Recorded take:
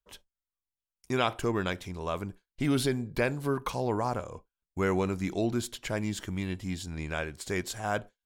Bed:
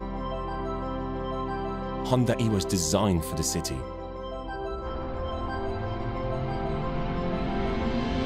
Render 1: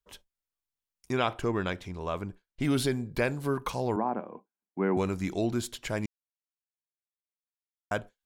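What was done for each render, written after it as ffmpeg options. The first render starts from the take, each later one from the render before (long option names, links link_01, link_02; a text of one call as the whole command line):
ffmpeg -i in.wav -filter_complex "[0:a]asettb=1/sr,asplit=3[link_01][link_02][link_03];[link_01]atrim=end=1.124[link_04];[link_02]atrim=start=1.12:end=2.62,asetpts=PTS-STARTPTS,afade=type=in:duration=0.004:curve=qsin,afade=type=out:start_time=1.496:duration=0.004:curve=qsin,highshelf=frequency=6400:gain=-10.5[link_05];[link_03]atrim=start=2.616[link_06];[link_04][link_05]acrossfade=duration=0.004:curve1=hsin:curve2=qsin[link_07];[link_07][link_06]acrossfade=duration=0.004:curve1=qsin:curve2=hsin,asettb=1/sr,asplit=3[link_08][link_09][link_10];[link_08]atrim=end=3.964[link_11];[link_09]atrim=start=3.96:end=4.97,asetpts=PTS-STARTPTS,afade=type=in:duration=0.004:curve=qsin,afade=type=out:start_time=1.006:duration=0.004:curve=qsin,highpass=frequency=190:width=0.5412,highpass=frequency=190:width=1.3066,equalizer=frequency=210:width_type=q:width=4:gain=8,equalizer=frequency=330:width_type=q:width=4:gain=4,equalizer=frequency=520:width_type=q:width=4:gain=-4,equalizer=frequency=800:width_type=q:width=4:gain=4,equalizer=frequency=1300:width_type=q:width=4:gain=-6,equalizer=frequency=1900:width_type=q:width=4:gain=-4,lowpass=frequency=2100:width=0.5412,lowpass=frequency=2100:width=1.3066[link_12];[link_10]atrim=start=4.966[link_13];[link_11][link_12]acrossfade=duration=0.004:curve1=hsin:curve2=qsin[link_14];[link_14][link_13]acrossfade=duration=0.004:curve1=qsin:curve2=hsin,asplit=3[link_15][link_16][link_17];[link_15]atrim=end=6.06,asetpts=PTS-STARTPTS,afade=type=out:start_time=6.056:duration=0.004:curve=hsin[link_18];[link_16]atrim=start=6.06:end=7.91,asetpts=PTS-STARTPTS,volume=0[link_19];[link_17]atrim=start=7.91,asetpts=PTS-STARTPTS,afade=type=in:duration=0.004:curve=hsin[link_20];[link_18][link_19][link_20]concat=n=3:v=0:a=1" out.wav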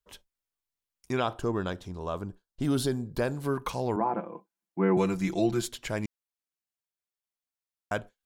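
ffmpeg -i in.wav -filter_complex "[0:a]asettb=1/sr,asplit=3[link_01][link_02][link_03];[link_01]atrim=end=1.204[link_04];[link_02]atrim=start=1.2:end=3.35,asetpts=PTS-STARTPTS,afade=type=in:duration=0.004:curve=qsin,afade=type=out:start_time=2.146:duration=0.004:curve=qsin,equalizer=frequency=2200:width=2.6:gain=-13.5[link_05];[link_03]atrim=start=3.346[link_06];[link_04][link_05]acrossfade=duration=0.004:curve1=hsin:curve2=qsin[link_07];[link_07][link_06]acrossfade=duration=0.004:curve1=qsin:curve2=hsin,asettb=1/sr,asplit=3[link_08][link_09][link_10];[link_08]atrim=end=4.004[link_11];[link_09]atrim=start=4:end=5.69,asetpts=PTS-STARTPTS,afade=type=in:duration=0.004:curve=qsin,afade=type=out:start_time=1.686:duration=0.004:curve=qsin,aecho=1:1:5.9:0.85,atrim=end_sample=74529[link_12];[link_10]atrim=start=5.686[link_13];[link_11][link_12]acrossfade=duration=0.004:curve1=hsin:curve2=qsin[link_14];[link_14][link_13]acrossfade=duration=0.004:curve1=qsin:curve2=hsin" out.wav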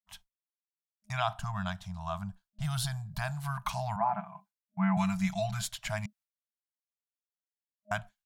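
ffmpeg -i in.wav -af "agate=range=-33dB:threshold=-53dB:ratio=3:detection=peak,afftfilt=real='re*(1-between(b*sr/4096,210,620))':imag='im*(1-between(b*sr/4096,210,620))':win_size=4096:overlap=0.75" out.wav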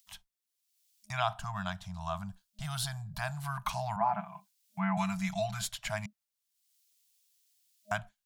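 ffmpeg -i in.wav -filter_complex "[0:a]acrossover=split=210|2900[link_01][link_02][link_03];[link_01]alimiter=level_in=14dB:limit=-24dB:level=0:latency=1:release=24,volume=-14dB[link_04];[link_03]acompressor=mode=upward:threshold=-50dB:ratio=2.5[link_05];[link_04][link_02][link_05]amix=inputs=3:normalize=0" out.wav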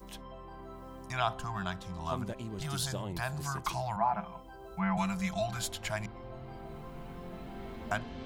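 ffmpeg -i in.wav -i bed.wav -filter_complex "[1:a]volume=-15.5dB[link_01];[0:a][link_01]amix=inputs=2:normalize=0" out.wav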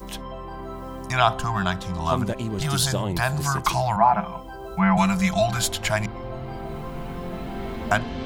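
ffmpeg -i in.wav -af "volume=12dB" out.wav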